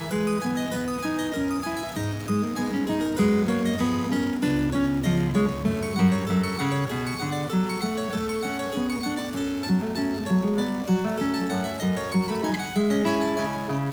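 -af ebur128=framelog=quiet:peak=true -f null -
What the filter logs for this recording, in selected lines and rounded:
Integrated loudness:
  I:         -25.5 LUFS
  Threshold: -35.5 LUFS
Loudness range:
  LRA:         3.0 LU
  Threshold: -45.4 LUFS
  LRA low:   -27.1 LUFS
  LRA high:  -24.0 LUFS
True peak:
  Peak:       -9.1 dBFS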